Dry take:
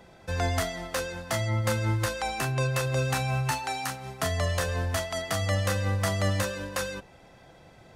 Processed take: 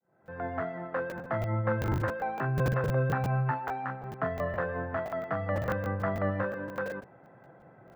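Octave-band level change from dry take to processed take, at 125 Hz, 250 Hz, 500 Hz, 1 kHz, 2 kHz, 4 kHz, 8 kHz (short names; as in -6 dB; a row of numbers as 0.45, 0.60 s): -3.5 dB, -0.5 dB, -0.5 dB, -1.0 dB, -4.0 dB, -20.5 dB, under -20 dB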